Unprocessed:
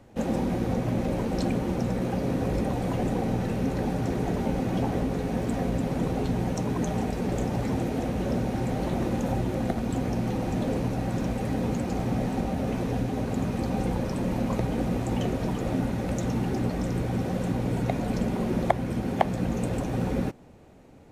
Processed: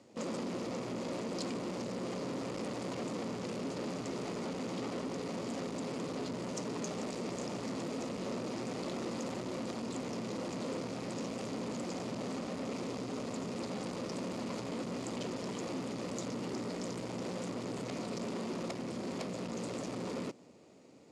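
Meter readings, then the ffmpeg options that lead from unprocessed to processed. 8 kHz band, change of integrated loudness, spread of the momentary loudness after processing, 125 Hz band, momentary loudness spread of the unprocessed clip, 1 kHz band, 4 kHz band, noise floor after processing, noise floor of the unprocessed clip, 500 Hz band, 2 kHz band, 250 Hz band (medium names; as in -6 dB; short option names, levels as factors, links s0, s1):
-2.0 dB, -11.0 dB, 1 LU, -17.0 dB, 2 LU, -11.0 dB, -2.0 dB, -42 dBFS, -32 dBFS, -8.5 dB, -8.0 dB, -11.0 dB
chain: -af "aeval=exprs='(tanh(50.1*val(0)+0.75)-tanh(0.75))/50.1':c=same,highpass=220,equalizer=f=790:t=q:w=4:g=-7,equalizer=f=1600:t=q:w=4:g=-8,equalizer=f=4800:t=q:w=4:g=8,equalizer=f=7000:t=q:w=4:g=6,lowpass=f=9900:w=0.5412,lowpass=f=9900:w=1.3066,volume=1.12"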